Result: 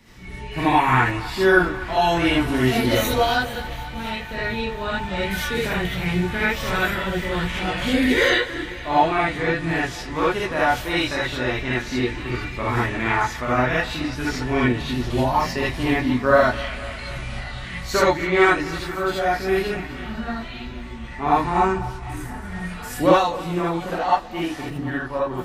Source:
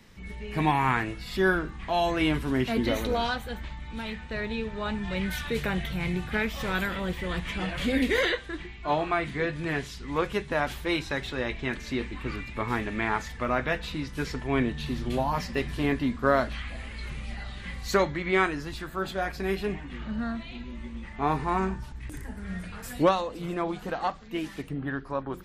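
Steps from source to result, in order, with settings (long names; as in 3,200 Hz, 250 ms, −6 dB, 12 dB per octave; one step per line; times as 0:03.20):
0:02.49–0:03.18: high-shelf EQ 6,600 Hz +10.5 dB
feedback echo with a high-pass in the loop 248 ms, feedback 75%, high-pass 320 Hz, level −17 dB
reverb whose tail is shaped and stops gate 100 ms rising, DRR −7 dB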